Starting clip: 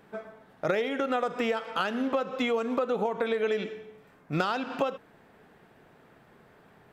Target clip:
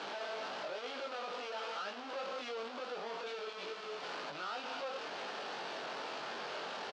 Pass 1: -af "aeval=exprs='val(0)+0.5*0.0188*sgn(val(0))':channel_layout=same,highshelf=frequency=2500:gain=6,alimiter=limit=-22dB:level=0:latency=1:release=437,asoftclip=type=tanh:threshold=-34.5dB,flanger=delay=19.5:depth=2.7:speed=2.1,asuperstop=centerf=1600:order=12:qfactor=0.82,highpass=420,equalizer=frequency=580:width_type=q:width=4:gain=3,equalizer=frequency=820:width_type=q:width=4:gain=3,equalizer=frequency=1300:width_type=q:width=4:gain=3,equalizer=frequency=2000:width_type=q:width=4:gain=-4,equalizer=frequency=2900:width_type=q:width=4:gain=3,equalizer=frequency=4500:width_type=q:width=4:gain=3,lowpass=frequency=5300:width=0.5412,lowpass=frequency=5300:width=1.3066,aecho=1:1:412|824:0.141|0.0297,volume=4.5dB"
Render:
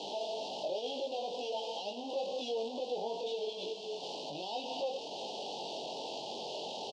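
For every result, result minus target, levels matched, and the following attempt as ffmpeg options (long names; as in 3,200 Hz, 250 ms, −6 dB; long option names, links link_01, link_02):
2,000 Hz band −13.5 dB; soft clipping: distortion −4 dB
-af "aeval=exprs='val(0)+0.5*0.0188*sgn(val(0))':channel_layout=same,highshelf=frequency=2500:gain=6,alimiter=limit=-22dB:level=0:latency=1:release=437,asoftclip=type=tanh:threshold=-34.5dB,flanger=delay=19.5:depth=2.7:speed=2.1,highpass=420,equalizer=frequency=580:width_type=q:width=4:gain=3,equalizer=frequency=820:width_type=q:width=4:gain=3,equalizer=frequency=1300:width_type=q:width=4:gain=3,equalizer=frequency=2000:width_type=q:width=4:gain=-4,equalizer=frequency=2900:width_type=q:width=4:gain=3,equalizer=frequency=4500:width_type=q:width=4:gain=3,lowpass=frequency=5300:width=0.5412,lowpass=frequency=5300:width=1.3066,aecho=1:1:412|824:0.141|0.0297,volume=4.5dB"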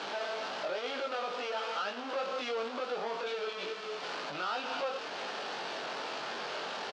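soft clipping: distortion −4 dB
-af "aeval=exprs='val(0)+0.5*0.0188*sgn(val(0))':channel_layout=same,highshelf=frequency=2500:gain=6,alimiter=limit=-22dB:level=0:latency=1:release=437,asoftclip=type=tanh:threshold=-42.5dB,flanger=delay=19.5:depth=2.7:speed=2.1,highpass=420,equalizer=frequency=580:width_type=q:width=4:gain=3,equalizer=frequency=820:width_type=q:width=4:gain=3,equalizer=frequency=1300:width_type=q:width=4:gain=3,equalizer=frequency=2000:width_type=q:width=4:gain=-4,equalizer=frequency=2900:width_type=q:width=4:gain=3,equalizer=frequency=4500:width_type=q:width=4:gain=3,lowpass=frequency=5300:width=0.5412,lowpass=frequency=5300:width=1.3066,aecho=1:1:412|824:0.141|0.0297,volume=4.5dB"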